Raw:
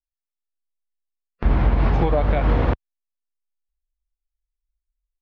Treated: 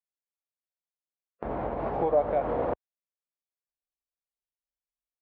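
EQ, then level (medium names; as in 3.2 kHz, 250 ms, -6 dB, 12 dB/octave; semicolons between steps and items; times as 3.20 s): band-pass filter 600 Hz, Q 1.7; 0.0 dB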